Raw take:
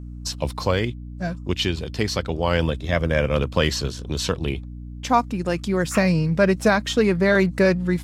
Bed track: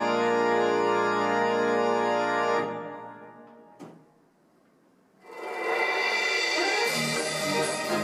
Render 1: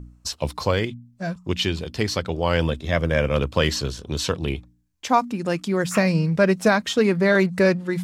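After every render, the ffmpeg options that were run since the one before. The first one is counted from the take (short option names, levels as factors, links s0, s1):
-af "bandreject=f=60:t=h:w=4,bandreject=f=120:t=h:w=4,bandreject=f=180:t=h:w=4,bandreject=f=240:t=h:w=4,bandreject=f=300:t=h:w=4"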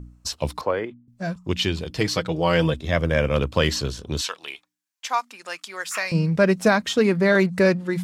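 -filter_complex "[0:a]asettb=1/sr,asplit=3[s0][s1][s2];[s0]atrim=end=0.614[s3];[s1]atrim=start=0.61:end=1.08,asetpts=PTS-STARTPTS,afade=t=in:d=0.004:c=qsin,afade=t=out:st=0.466:d=0.004:c=qsin,acrossover=split=280 2000:gain=0.141 1 0.0708[s4][s5][s6];[s4][s5][s6]amix=inputs=3:normalize=0[s7];[s2]atrim=start=1.076[s8];[s3][s7]acrossfade=d=0.004:c1=hsin:c2=qsin[s9];[s9][s8]acrossfade=d=0.004:c1=qsin:c2=hsin,asettb=1/sr,asplit=3[s10][s11][s12];[s10]atrim=end=1.904[s13];[s11]atrim=start=1.9:end=2.74,asetpts=PTS-STARTPTS,afade=t=in:d=0.004:c=qsin,afade=t=out:st=0.836:d=0.004:c=qsin,aecho=1:1:6.3:0.65,atrim=end_sample=37044[s14];[s12]atrim=start=2.736[s15];[s13][s14]acrossfade=d=0.004:c1=hsin:c2=qsin[s16];[s16][s15]acrossfade=d=0.004:c1=qsin:c2=hsin,asettb=1/sr,asplit=3[s17][s18][s19];[s17]atrim=end=4.214[s20];[s18]atrim=start=4.21:end=6.12,asetpts=PTS-STARTPTS,afade=t=in:d=0.004:c=qsin,afade=t=out:st=1.906:d=0.004:c=qsin,highpass=1100[s21];[s19]atrim=start=6.116[s22];[s20][s21]acrossfade=d=0.004:c1=hsin:c2=qsin[s23];[s23][s22]acrossfade=d=0.004:c1=qsin:c2=hsin"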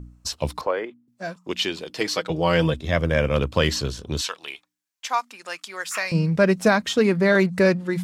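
-filter_complex "[0:a]asettb=1/sr,asplit=3[s0][s1][s2];[s0]atrim=end=0.674[s3];[s1]atrim=start=0.67:end=2.3,asetpts=PTS-STARTPTS,afade=t=in:d=0.004:c=qsin,afade=t=out:st=1.626:d=0.004:c=qsin,highpass=310[s4];[s2]atrim=start=2.296[s5];[s3][s4]acrossfade=d=0.004:c1=hsin:c2=qsin[s6];[s6][s5]acrossfade=d=0.004:c1=qsin:c2=hsin"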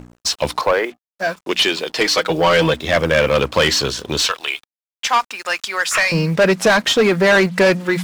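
-filter_complex "[0:a]asplit=2[s0][s1];[s1]highpass=f=720:p=1,volume=11.2,asoftclip=type=tanh:threshold=0.596[s2];[s0][s2]amix=inputs=2:normalize=0,lowpass=f=5100:p=1,volume=0.501,acrusher=bits=6:mix=0:aa=0.5"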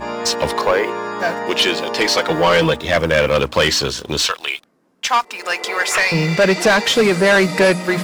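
-filter_complex "[1:a]volume=1[s0];[0:a][s0]amix=inputs=2:normalize=0"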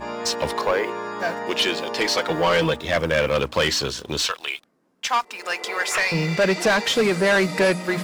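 -af "volume=0.531"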